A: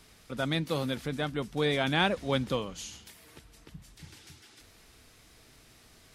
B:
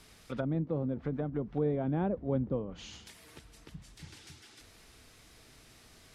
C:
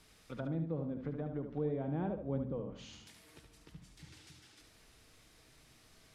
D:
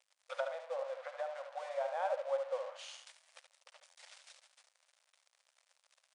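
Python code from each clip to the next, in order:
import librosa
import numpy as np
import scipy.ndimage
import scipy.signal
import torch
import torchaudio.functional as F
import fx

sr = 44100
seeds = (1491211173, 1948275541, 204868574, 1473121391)

y1 = fx.env_lowpass_down(x, sr, base_hz=510.0, full_db=-28.5)
y2 = fx.echo_feedback(y1, sr, ms=73, feedback_pct=28, wet_db=-7.0)
y2 = fx.room_shoebox(y2, sr, seeds[0], volume_m3=1900.0, walls='furnished', distance_m=0.54)
y2 = y2 * 10.0 ** (-6.5 / 20.0)
y3 = np.sign(y2) * np.maximum(np.abs(y2) - 10.0 ** (-57.0 / 20.0), 0.0)
y3 = fx.brickwall_bandpass(y3, sr, low_hz=500.0, high_hz=10000.0)
y3 = y3 * 10.0 ** (9.0 / 20.0)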